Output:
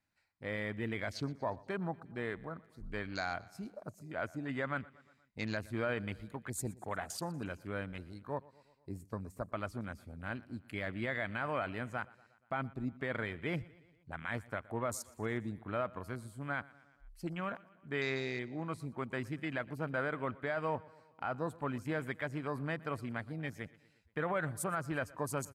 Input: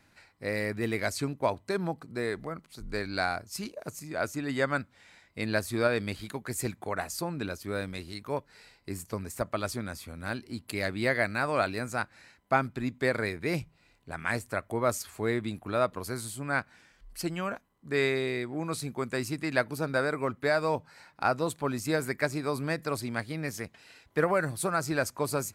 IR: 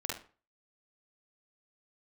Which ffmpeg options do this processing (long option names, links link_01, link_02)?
-filter_complex "[0:a]equalizer=frequency=400:width=1.6:gain=-4.5,alimiter=limit=-20.5dB:level=0:latency=1:release=29,afwtdn=0.00794,asplit=2[link_01][link_02];[link_02]aecho=0:1:119|238|357|476:0.0794|0.0469|0.0277|0.0163[link_03];[link_01][link_03]amix=inputs=2:normalize=0,volume=-4.5dB"